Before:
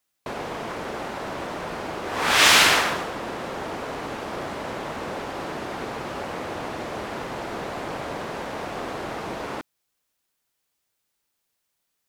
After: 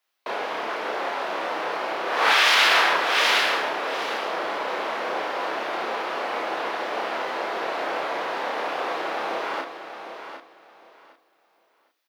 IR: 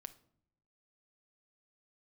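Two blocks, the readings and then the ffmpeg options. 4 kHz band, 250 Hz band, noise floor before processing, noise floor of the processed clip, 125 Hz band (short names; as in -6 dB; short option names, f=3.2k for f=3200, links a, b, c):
0.0 dB, -4.5 dB, -77 dBFS, -66 dBFS, under -15 dB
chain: -filter_complex "[0:a]highpass=f=150:w=0.5412,highpass=f=150:w=1.3066,lowshelf=f=230:g=-11,aecho=1:1:757|1514|2271:0.335|0.0703|0.0148,aeval=exprs='0.75*(cos(1*acos(clip(val(0)/0.75,-1,1)))-cos(1*PI/2))+0.00473*(cos(4*acos(clip(val(0)/0.75,-1,1)))-cos(4*PI/2))':c=same,aexciter=amount=3:drive=7.1:freq=10k,acrossover=split=330 5400:gain=0.2 1 0.0794[a][b][c];[a][b][c]amix=inputs=3:normalize=0,asplit=2[d][e];[1:a]atrim=start_sample=2205,adelay=30[f];[e][f]afir=irnorm=-1:irlink=0,volume=3.5dB[g];[d][g]amix=inputs=2:normalize=0,alimiter=level_in=11dB:limit=-1dB:release=50:level=0:latency=1,volume=-7.5dB"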